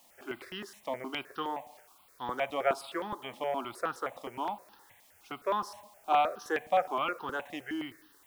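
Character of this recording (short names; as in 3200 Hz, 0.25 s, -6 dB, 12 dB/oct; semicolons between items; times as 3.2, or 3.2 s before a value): a quantiser's noise floor 10-bit, dither triangular; notches that jump at a steady rate 9.6 Hz 400–2200 Hz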